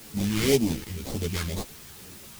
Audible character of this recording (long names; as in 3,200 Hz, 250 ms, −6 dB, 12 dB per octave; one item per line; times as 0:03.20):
aliases and images of a low sample rate 2,700 Hz, jitter 20%
phaser sweep stages 2, 2 Hz, lowest notch 580–1,500 Hz
a quantiser's noise floor 8 bits, dither triangular
a shimmering, thickened sound